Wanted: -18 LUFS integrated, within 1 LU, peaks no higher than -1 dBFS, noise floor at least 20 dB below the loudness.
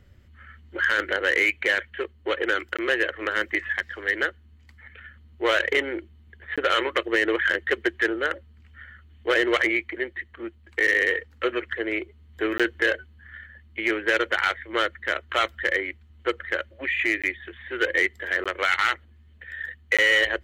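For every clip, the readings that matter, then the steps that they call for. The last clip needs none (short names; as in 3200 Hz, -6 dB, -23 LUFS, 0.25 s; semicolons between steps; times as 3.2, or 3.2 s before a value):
clipped 0.3%; flat tops at -13.0 dBFS; dropouts 6; longest dropout 16 ms; loudness -24.5 LUFS; peak -13.0 dBFS; loudness target -18.0 LUFS
-> clip repair -13 dBFS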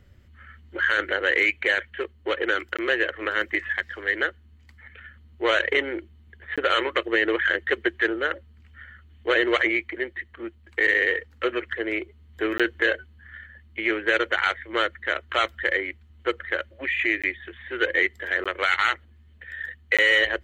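clipped 0.0%; dropouts 6; longest dropout 16 ms
-> interpolate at 2.77/6.56/12.58/17.22/18.44/19.97, 16 ms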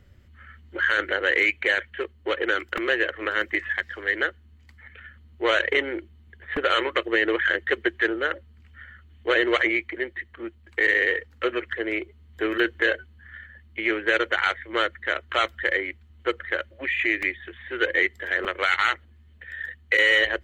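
dropouts 0; loudness -24.0 LUFS; peak -8.5 dBFS; loudness target -18.0 LUFS
-> gain +6 dB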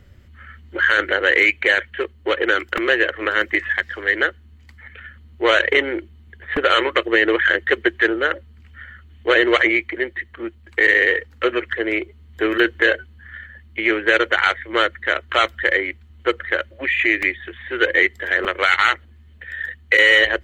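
loudness -18.0 LUFS; peak -2.5 dBFS; noise floor -48 dBFS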